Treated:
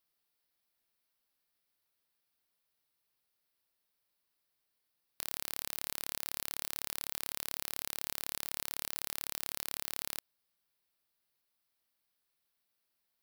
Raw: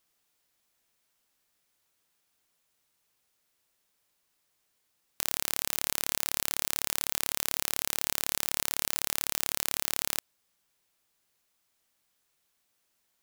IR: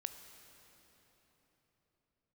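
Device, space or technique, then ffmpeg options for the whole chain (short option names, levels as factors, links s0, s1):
exciter from parts: -filter_complex "[0:a]asplit=2[s0][s1];[s1]highpass=f=3800:w=0.5412,highpass=f=3800:w=1.3066,asoftclip=type=tanh:threshold=0.119,highpass=f=4400:w=0.5412,highpass=f=4400:w=1.3066,volume=0.596[s2];[s0][s2]amix=inputs=2:normalize=0,volume=0.376"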